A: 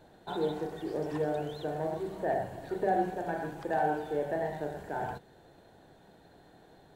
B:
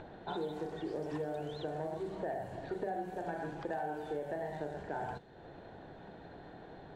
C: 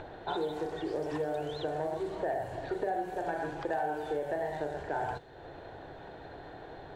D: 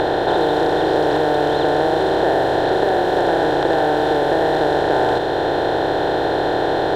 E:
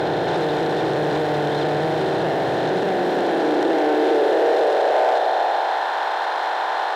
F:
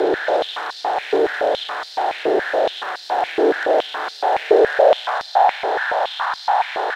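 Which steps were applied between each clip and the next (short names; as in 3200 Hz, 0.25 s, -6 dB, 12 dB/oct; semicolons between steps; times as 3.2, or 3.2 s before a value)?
upward compressor, threshold -42 dBFS; low-pass opened by the level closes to 2400 Hz, open at -27.5 dBFS; compressor 6:1, threshold -35 dBFS, peak gain reduction 11 dB
bell 200 Hz -11 dB 0.74 oct; gain +6 dB
per-bin compression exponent 0.2; gain +8.5 dB
in parallel at -1 dB: limiter -14 dBFS, peak gain reduction 10.5 dB; on the sum: soft clip -14 dBFS, distortion -11 dB; high-pass sweep 140 Hz -> 960 Hz, 2.41–5.89; gain -4 dB
frequency-shifting echo 0.103 s, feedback 60%, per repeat -88 Hz, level -18 dB; frequency shift -14 Hz; stepped high-pass 7.1 Hz 400–4600 Hz; gain -2 dB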